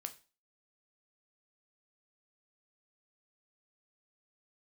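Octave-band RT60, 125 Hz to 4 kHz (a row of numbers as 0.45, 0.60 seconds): 0.30, 0.35, 0.35, 0.35, 0.35, 0.35 seconds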